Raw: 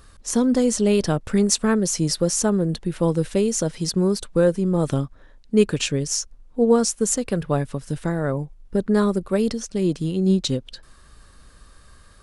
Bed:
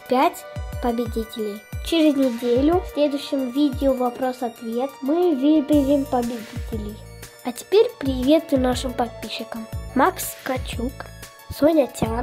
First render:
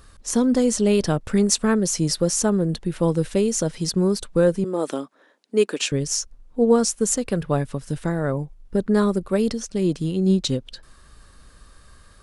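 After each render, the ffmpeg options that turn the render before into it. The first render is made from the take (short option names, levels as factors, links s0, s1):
-filter_complex "[0:a]asettb=1/sr,asplit=3[s0][s1][s2];[s0]atrim=end=4.644[s3];[s1]atrim=start=4.64:end=5.92,asetpts=PTS-STARTPTS,afade=t=in:d=0.004:c=qsin,afade=t=out:st=1.276:d=0.004:c=qsin,highpass=f=270:w=0.5412,highpass=f=270:w=1.3066[s4];[s2]atrim=start=5.916[s5];[s3][s4]acrossfade=d=0.004:c1=hsin:c2=qsin[s6];[s6][s5]acrossfade=d=0.004:c1=qsin:c2=hsin"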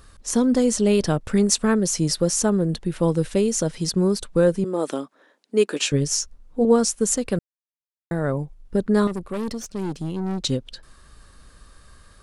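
-filter_complex "[0:a]asettb=1/sr,asplit=3[s0][s1][s2];[s0]atrim=end=5.694[s3];[s1]atrim=start=5.69:end=6.65,asetpts=PTS-STARTPTS,afade=t=in:d=0.004:c=qsin,afade=t=out:st=0.956:d=0.004:c=qsin,asplit=2[s4][s5];[s5]adelay=14,volume=0.501[s6];[s4][s6]amix=inputs=2:normalize=0,atrim=end_sample=42336[s7];[s2]atrim=start=6.646[s8];[s3][s7]acrossfade=d=0.004:c1=hsin:c2=qsin[s9];[s9][s8]acrossfade=d=0.004:c1=qsin:c2=hsin,asettb=1/sr,asplit=3[s10][s11][s12];[s10]atrim=end=9.074[s13];[s11]atrim=start=9.07:end=10.4,asetpts=PTS-STARTPTS,afade=t=in:d=0.004:c=qsin,afade=t=out:st=1.326:d=0.004:c=qsin,aeval=exprs='(tanh(15.8*val(0)+0.5)-tanh(0.5))/15.8':c=same[s14];[s12]atrim=start=10.396[s15];[s13][s14]acrossfade=d=0.004:c1=hsin:c2=qsin[s16];[s16][s15]acrossfade=d=0.004:c1=qsin:c2=hsin,asplit=3[s17][s18][s19];[s17]atrim=end=7.39,asetpts=PTS-STARTPTS,afade=t=out:st=7.386:d=0.004:c=hsin[s20];[s18]atrim=start=7.39:end=8.11,asetpts=PTS-STARTPTS,volume=0[s21];[s19]atrim=start=8.11,asetpts=PTS-STARTPTS,afade=t=in:d=0.004:c=hsin[s22];[s20][s21][s22]concat=n=3:v=0:a=1"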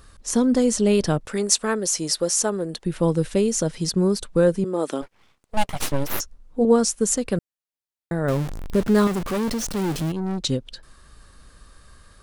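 -filter_complex "[0:a]asettb=1/sr,asplit=3[s0][s1][s2];[s0]atrim=end=1.254[s3];[s1]atrim=start=1.25:end=2.86,asetpts=PTS-STARTPTS,afade=t=in:d=0.004:c=qsin,afade=t=out:st=1.606:d=0.004:c=qsin,bass=f=250:g=-14,treble=f=4000:g=2[s4];[s2]atrim=start=2.856[s5];[s3][s4]acrossfade=d=0.004:c1=hsin:c2=qsin[s6];[s6][s5]acrossfade=d=0.004:c1=qsin:c2=hsin,asplit=3[s7][s8][s9];[s7]afade=t=out:st=5.01:d=0.02[s10];[s8]aeval=exprs='abs(val(0))':c=same,afade=t=in:st=5.01:d=0.02,afade=t=out:st=6.19:d=0.02[s11];[s9]afade=t=in:st=6.19:d=0.02[s12];[s10][s11][s12]amix=inputs=3:normalize=0,asettb=1/sr,asplit=3[s13][s14][s15];[s13]atrim=end=8.284[s16];[s14]atrim=start=8.28:end=10.12,asetpts=PTS-STARTPTS,afade=t=in:d=0.004:c=qsin,afade=t=out:st=1.836:d=0.004:c=qsin,aeval=exprs='val(0)+0.5*0.0531*sgn(val(0))':c=same[s17];[s15]atrim=start=10.116[s18];[s16][s17]acrossfade=d=0.004:c1=hsin:c2=qsin[s19];[s19][s18]acrossfade=d=0.004:c1=qsin:c2=hsin"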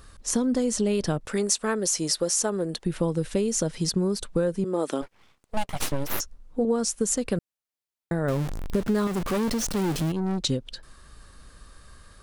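-af "acompressor=threshold=0.0891:ratio=5"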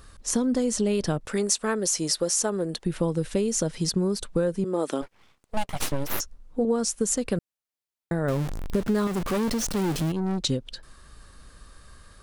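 -af anull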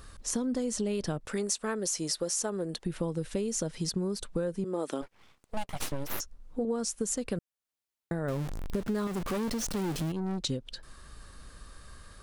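-af "acompressor=threshold=0.01:ratio=1.5"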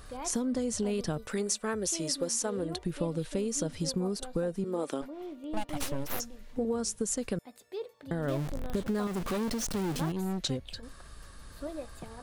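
-filter_complex "[1:a]volume=0.0708[s0];[0:a][s0]amix=inputs=2:normalize=0"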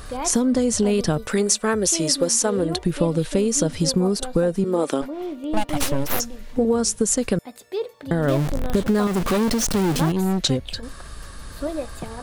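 -af "volume=3.76"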